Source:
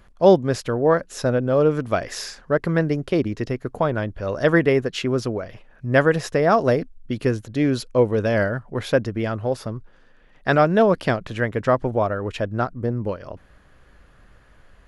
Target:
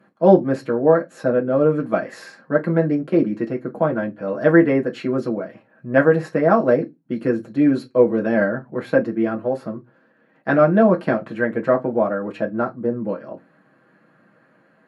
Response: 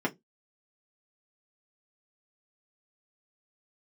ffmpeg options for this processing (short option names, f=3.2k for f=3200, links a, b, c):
-filter_complex "[0:a]highpass=250[a];[1:a]atrim=start_sample=2205,asetrate=34398,aresample=44100[b];[a][b]afir=irnorm=-1:irlink=0,volume=-10dB"